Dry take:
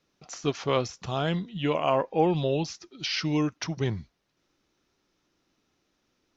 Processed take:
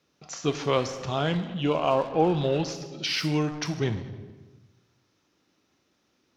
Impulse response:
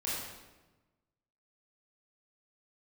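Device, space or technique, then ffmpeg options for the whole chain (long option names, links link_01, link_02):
saturated reverb return: -filter_complex "[0:a]highpass=75,asplit=2[link_01][link_02];[1:a]atrim=start_sample=2205[link_03];[link_02][link_03]afir=irnorm=-1:irlink=0,asoftclip=type=tanh:threshold=-26dB,volume=-7dB[link_04];[link_01][link_04]amix=inputs=2:normalize=0,asettb=1/sr,asplit=3[link_05][link_06][link_07];[link_05]atrim=end=1.614[link_08];[link_06]atrim=start=1.61:end=2.41,asetpts=PTS-STARTPTS,afade=type=in:duration=0.004:curve=qsin,afade=type=out:start_time=0.796:duration=0.004:curve=qsin,equalizer=frequency=1900:width_type=o:width=0.37:gain=-10.5[link_09];[link_07]atrim=start=2.406[link_10];[link_08][link_09]acrossfade=duration=0.004:curve1=hsin:curve2=qsin[link_11];[link_11][link_10]acrossfade=duration=0.004:curve1=qsin:curve2=hsin"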